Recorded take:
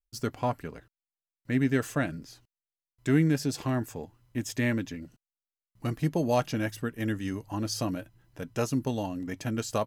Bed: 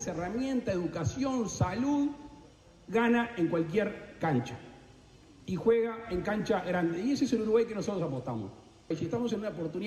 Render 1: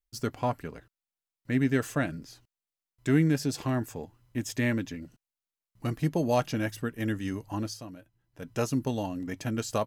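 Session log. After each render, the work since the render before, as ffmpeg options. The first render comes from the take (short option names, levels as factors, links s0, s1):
-filter_complex "[0:a]asplit=3[s0][s1][s2];[s0]atrim=end=7.78,asetpts=PTS-STARTPTS,afade=t=out:st=7.6:d=0.18:silence=0.237137[s3];[s1]atrim=start=7.78:end=8.32,asetpts=PTS-STARTPTS,volume=0.237[s4];[s2]atrim=start=8.32,asetpts=PTS-STARTPTS,afade=t=in:d=0.18:silence=0.237137[s5];[s3][s4][s5]concat=n=3:v=0:a=1"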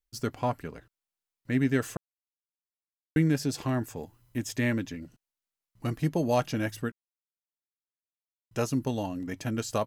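-filter_complex "[0:a]asettb=1/sr,asplit=3[s0][s1][s2];[s0]atrim=end=3.974[s3];[s1]atrim=start=3.97:end=4.38,asetpts=PTS-STARTPTS,afade=t=in:d=0.004:c=qsin,afade=t=out:st=0.406:d=0.004:c=qsin,highshelf=f=8700:g=11.5[s4];[s2]atrim=start=4.376[s5];[s3][s4]acrossfade=d=0.004:c1=hsin:c2=qsin[s6];[s6][s5]acrossfade=d=0.004:c1=qsin:c2=hsin,asplit=5[s7][s8][s9][s10][s11];[s7]atrim=end=1.97,asetpts=PTS-STARTPTS,afade=t=out:st=1.966:d=0.004:c=hsin[s12];[s8]atrim=start=1.97:end=3.16,asetpts=PTS-STARTPTS,volume=0[s13];[s9]atrim=start=3.16:end=6.92,asetpts=PTS-STARTPTS,afade=t=in:d=0.004:c=hsin,afade=t=out:st=3.756:d=0.004:c=hsin[s14];[s10]atrim=start=6.92:end=8.51,asetpts=PTS-STARTPTS,volume=0[s15];[s11]atrim=start=8.51,asetpts=PTS-STARTPTS,afade=t=in:d=0.004:c=hsin[s16];[s12][s13][s14][s15][s16]concat=n=5:v=0:a=1"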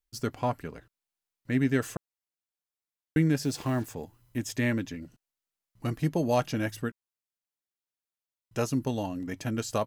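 -filter_complex "[0:a]asettb=1/sr,asplit=3[s0][s1][s2];[s0]atrim=end=3.444[s3];[s1]atrim=start=3.44:end=3.95,asetpts=PTS-STARTPTS,afade=t=in:d=0.004:c=qsin,afade=t=out:st=0.506:d=0.004:c=qsin,acrusher=bits=7:mix=0:aa=0.5[s4];[s2]atrim=start=3.946[s5];[s3][s4]acrossfade=d=0.004:c1=hsin:c2=qsin[s6];[s6][s5]acrossfade=d=0.004:c1=qsin:c2=hsin"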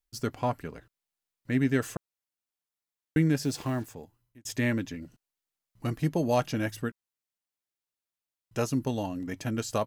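-filter_complex "[0:a]asplit=2[s0][s1];[s0]atrim=end=4.45,asetpts=PTS-STARTPTS,afade=t=out:st=3.55:d=0.9[s2];[s1]atrim=start=4.45,asetpts=PTS-STARTPTS,afade=t=in:d=0.004:c=hsin[s3];[s2][s3]concat=n=2:v=0:a=1"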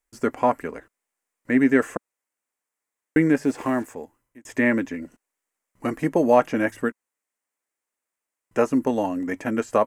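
-filter_complex "[0:a]acrossover=split=2900[s0][s1];[s1]acompressor=threshold=0.00355:ratio=4:attack=1:release=60[s2];[s0][s2]amix=inputs=2:normalize=0,equalizer=f=125:t=o:w=1:g=-9,equalizer=f=250:t=o:w=1:g=8,equalizer=f=500:t=o:w=1:g=8,equalizer=f=1000:t=o:w=1:g=7,equalizer=f=2000:t=o:w=1:g=10,equalizer=f=4000:t=o:w=1:g=-7,equalizer=f=8000:t=o:w=1:g=10"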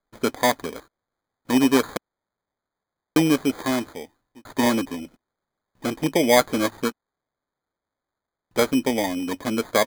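-af "acrusher=samples=16:mix=1:aa=0.000001"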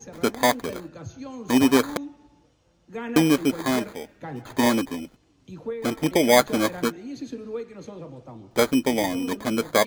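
-filter_complex "[1:a]volume=0.473[s0];[0:a][s0]amix=inputs=2:normalize=0"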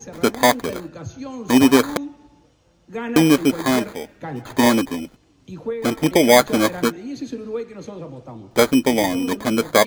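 -af "volume=1.78,alimiter=limit=0.794:level=0:latency=1"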